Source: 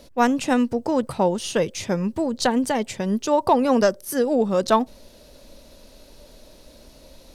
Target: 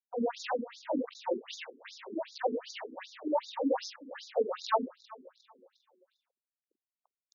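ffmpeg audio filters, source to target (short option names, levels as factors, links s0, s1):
-filter_complex "[0:a]afftfilt=real='re':imag='-im':win_size=4096:overlap=0.75,highpass=41,acrossover=split=200 6600:gain=0.178 1 0.1[s0][s1][s2];[s0][s1][s2]amix=inputs=3:normalize=0,areverse,acompressor=mode=upward:threshold=0.0141:ratio=2.5,areverse,aeval=exprs='val(0)*gte(abs(val(0)),0.0168)':c=same,asplit=2[s3][s4];[s4]aecho=0:1:356|712|1068|1424:0.1|0.051|0.026|0.0133[s5];[s3][s5]amix=inputs=2:normalize=0,afftfilt=real='re*between(b*sr/1024,300*pow(5100/300,0.5+0.5*sin(2*PI*2.6*pts/sr))/1.41,300*pow(5100/300,0.5+0.5*sin(2*PI*2.6*pts/sr))*1.41)':imag='im*between(b*sr/1024,300*pow(5100/300,0.5+0.5*sin(2*PI*2.6*pts/sr))/1.41,300*pow(5100/300,0.5+0.5*sin(2*PI*2.6*pts/sr))*1.41)':win_size=1024:overlap=0.75"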